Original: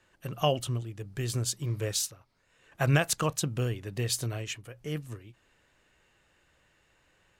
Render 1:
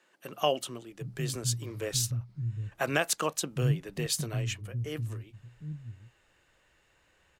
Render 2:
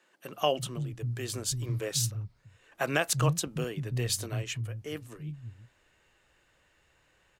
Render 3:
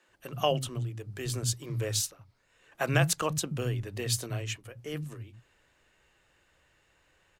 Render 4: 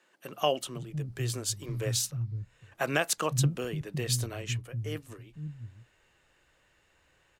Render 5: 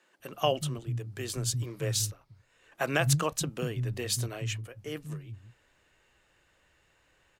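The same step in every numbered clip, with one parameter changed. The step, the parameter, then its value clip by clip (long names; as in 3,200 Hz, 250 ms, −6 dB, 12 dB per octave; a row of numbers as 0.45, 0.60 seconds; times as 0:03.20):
multiband delay without the direct sound, delay time: 760, 340, 80, 510, 190 milliseconds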